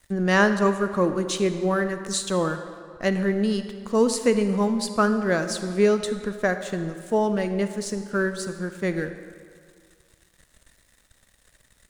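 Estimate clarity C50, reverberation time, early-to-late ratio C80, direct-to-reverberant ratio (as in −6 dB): 9.5 dB, 2.0 s, 10.5 dB, 9.0 dB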